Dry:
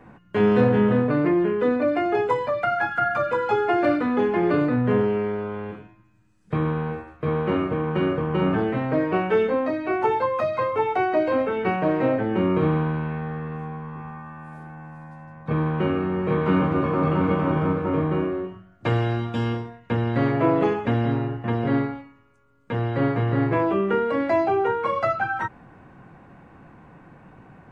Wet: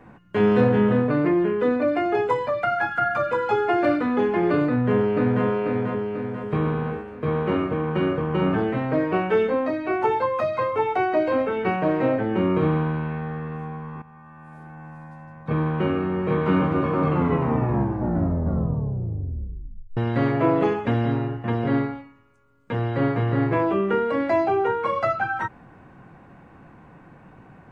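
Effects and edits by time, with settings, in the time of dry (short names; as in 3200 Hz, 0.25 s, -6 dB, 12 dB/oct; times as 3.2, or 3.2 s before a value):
4.67–5.45 echo throw 0.49 s, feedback 55%, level -0.5 dB
14.02–14.89 fade in, from -14 dB
17.03 tape stop 2.94 s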